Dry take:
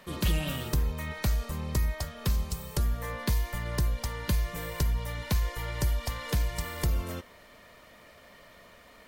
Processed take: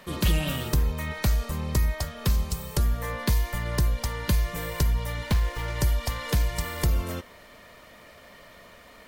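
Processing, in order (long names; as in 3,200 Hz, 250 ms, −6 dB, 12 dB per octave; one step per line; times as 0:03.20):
0:05.27–0:05.76: windowed peak hold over 5 samples
level +4 dB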